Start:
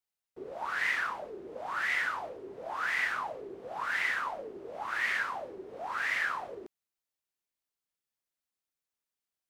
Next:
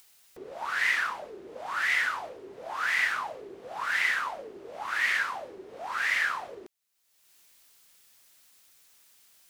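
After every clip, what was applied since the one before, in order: upward compressor, threshold -47 dBFS; tilt shelf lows -4.5 dB, about 1.4 kHz; trim +3 dB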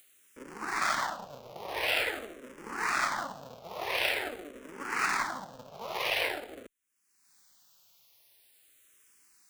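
cycle switcher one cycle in 3, inverted; barber-pole phaser -0.46 Hz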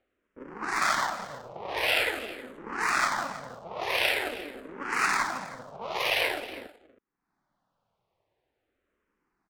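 level-controlled noise filter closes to 780 Hz, open at -30.5 dBFS; delay 319 ms -16.5 dB; trim +3.5 dB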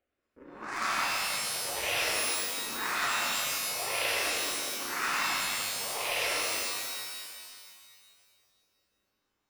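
pitch-shifted reverb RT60 2 s, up +12 st, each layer -2 dB, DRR -2 dB; trim -8.5 dB

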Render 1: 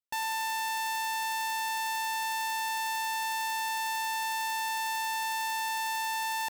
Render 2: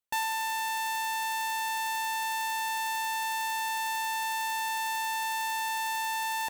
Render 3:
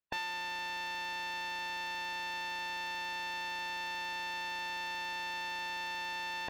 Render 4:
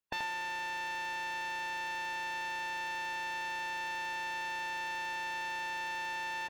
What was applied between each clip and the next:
reverb removal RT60 0.75 s; band-stop 5 kHz, Q 6.4; trim +3.5 dB
spectral peaks clipped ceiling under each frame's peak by 18 dB; distance through air 280 m
delay 82 ms -6.5 dB; on a send at -19 dB: reverberation RT60 0.40 s, pre-delay 88 ms

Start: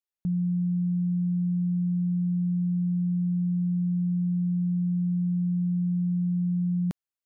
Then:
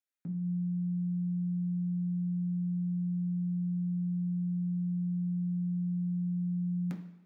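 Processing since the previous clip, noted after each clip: high-pass 220 Hz 12 dB/octave; reverberation RT60 1.1 s, pre-delay 3 ms, DRR 0.5 dB; trim -5.5 dB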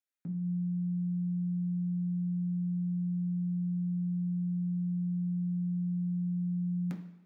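no audible change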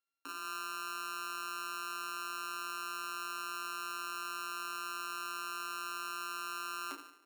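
sorted samples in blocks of 32 samples; rippled Chebyshev high-pass 270 Hz, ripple 3 dB; trim +2 dB

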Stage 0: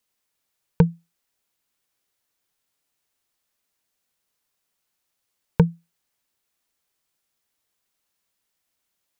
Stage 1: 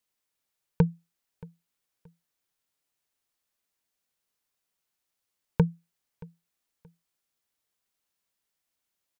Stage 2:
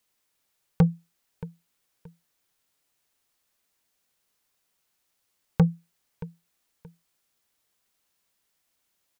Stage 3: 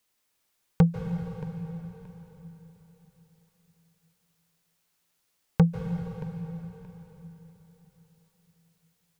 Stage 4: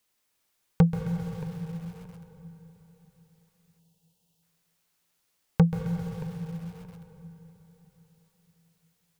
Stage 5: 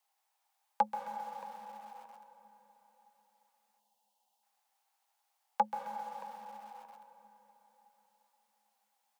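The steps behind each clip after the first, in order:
feedback delay 626 ms, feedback 28%, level -23 dB; trim -5.5 dB
saturation -19.5 dBFS, distortion -9 dB; trim +7.5 dB
reverberation RT60 4.0 s, pre-delay 136 ms, DRR 4.5 dB
time-frequency box 3.79–4.43 s, 1–2.6 kHz -13 dB; bit-crushed delay 132 ms, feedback 55%, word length 7-bit, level -12 dB
frequency shift +45 Hz; resonant high-pass 810 Hz, resonance Q 10; trim -7 dB

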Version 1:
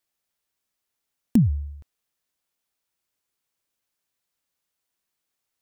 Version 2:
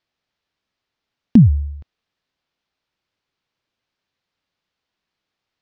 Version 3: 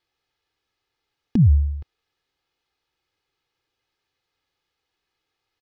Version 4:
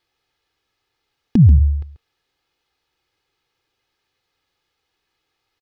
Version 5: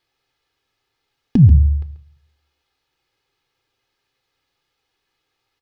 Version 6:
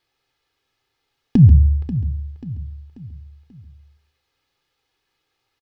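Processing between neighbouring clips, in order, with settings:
low-pass 4.8 kHz 24 dB/octave; peaking EQ 130 Hz +3.5 dB 2.1 oct; trim +6 dB
comb 2.4 ms, depth 62%; peak limiter -9.5 dBFS, peak gain reduction 7.5 dB
delay 137 ms -13.5 dB; trim +5 dB
reverberation RT60 0.50 s, pre-delay 7 ms, DRR 11 dB
feedback delay 537 ms, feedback 44%, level -13 dB

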